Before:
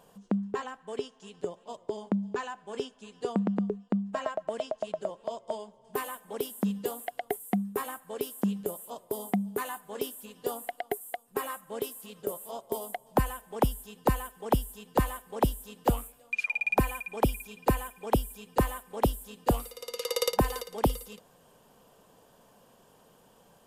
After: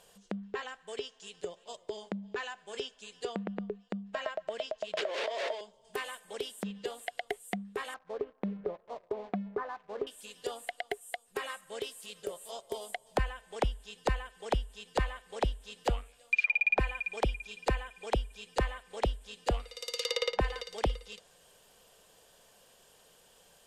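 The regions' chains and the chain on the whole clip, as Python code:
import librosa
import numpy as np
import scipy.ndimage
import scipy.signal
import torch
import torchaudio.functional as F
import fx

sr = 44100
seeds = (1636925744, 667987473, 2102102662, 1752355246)

y = fx.chain(x, sr, fx.zero_step(step_db=-41.5),
    fx.highpass(hz=310.0, slope=24),
    fx.pre_swell(db_per_s=22.0), at=(4.97, 5.61))
y = fx.chain(y, sr, fx.lowpass(hz=1300.0, slope=24),
    fx.leveller(passes=1), at=(7.94, 10.07))
y = fx.env_lowpass_down(y, sr, base_hz=2500.0, full_db=-26.0)
y = fx.graphic_eq(y, sr, hz=(125, 250, 1000, 2000, 4000, 8000), db=(-7, -11, -7, 4, 5, 5))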